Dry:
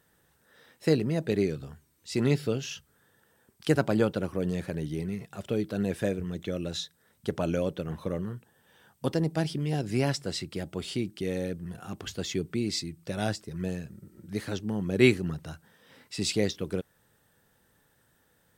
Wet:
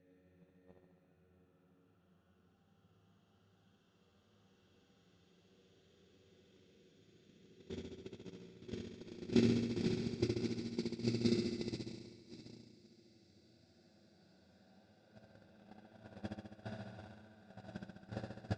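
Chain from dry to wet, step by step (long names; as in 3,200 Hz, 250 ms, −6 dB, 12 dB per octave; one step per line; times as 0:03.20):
extreme stretch with random phases 10×, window 1.00 s, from 0:11.55
noise gate −26 dBFS, range −44 dB
high-frequency loss of the air 120 metres
flutter between parallel walls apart 11.7 metres, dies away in 1.2 s
level +10 dB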